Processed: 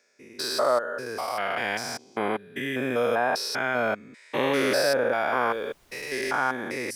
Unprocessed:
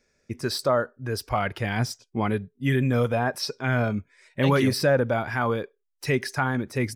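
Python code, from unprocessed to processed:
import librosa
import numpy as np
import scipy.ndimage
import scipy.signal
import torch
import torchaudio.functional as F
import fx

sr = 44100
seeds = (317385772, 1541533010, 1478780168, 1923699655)

y = fx.spec_steps(x, sr, hold_ms=200)
y = scipy.signal.sosfilt(scipy.signal.butter(2, 450.0, 'highpass', fs=sr, output='sos'), y)
y = fx.dmg_noise_colour(y, sr, seeds[0], colour='pink', level_db=-66.0, at=(5.48, 6.32), fade=0.02)
y = F.gain(torch.from_numpy(y), 6.0).numpy()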